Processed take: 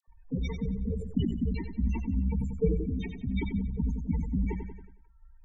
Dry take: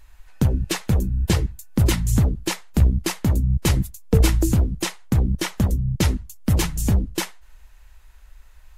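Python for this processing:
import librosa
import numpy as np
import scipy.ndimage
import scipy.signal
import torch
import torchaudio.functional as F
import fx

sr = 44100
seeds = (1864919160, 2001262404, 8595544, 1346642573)

p1 = scipy.signal.sosfilt(scipy.signal.butter(4, 9600.0, 'lowpass', fs=sr, output='sos'), x)
p2 = fx.low_shelf(p1, sr, hz=89.0, db=-8.0)
p3 = p2 + 0.88 * np.pad(p2, (int(4.4 * sr / 1000.0), 0))[:len(p2)]
p4 = fx.stretch_vocoder_free(p3, sr, factor=0.62)
p5 = fx.spec_topn(p4, sr, count=8)
p6 = fx.env_phaser(p5, sr, low_hz=320.0, high_hz=1400.0, full_db=-26.5)
p7 = fx.dispersion(p6, sr, late='lows', ms=78.0, hz=1000.0)
p8 = p7 + fx.echo_feedback(p7, sr, ms=92, feedback_pct=51, wet_db=-10.5, dry=0)
p9 = fx.sustainer(p8, sr, db_per_s=51.0)
y = p9 * 10.0 ** (-4.5 / 20.0)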